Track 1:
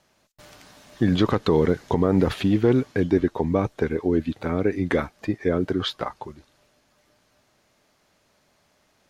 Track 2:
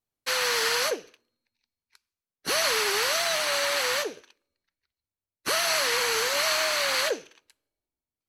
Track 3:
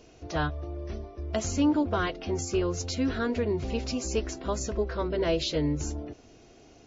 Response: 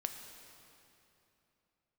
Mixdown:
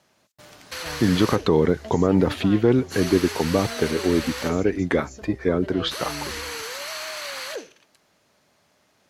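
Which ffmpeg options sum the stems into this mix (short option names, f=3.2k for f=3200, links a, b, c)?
-filter_complex "[0:a]highpass=81,volume=1dB[a];[1:a]alimiter=limit=-22.5dB:level=0:latency=1:release=15,adelay=450,volume=-1.5dB[b];[2:a]adelay=500,volume=-9.5dB[c];[a][b][c]amix=inputs=3:normalize=0"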